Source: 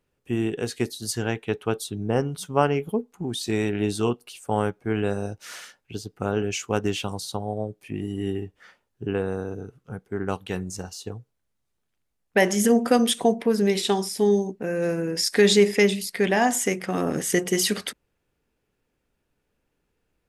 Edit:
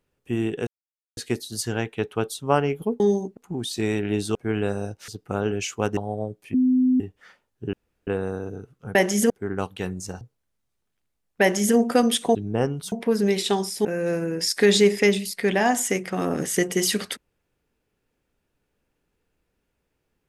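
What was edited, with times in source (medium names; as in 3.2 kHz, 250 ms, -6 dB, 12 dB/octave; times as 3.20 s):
0.67 s: insert silence 0.50 s
1.90–2.47 s: move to 13.31 s
4.05–4.76 s: delete
5.49–5.99 s: delete
6.88–7.36 s: delete
7.93–8.39 s: bleep 255 Hz -15.5 dBFS
9.12 s: insert room tone 0.34 s
10.91–11.17 s: delete
12.37–12.72 s: copy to 10.00 s
14.24–14.61 s: move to 3.07 s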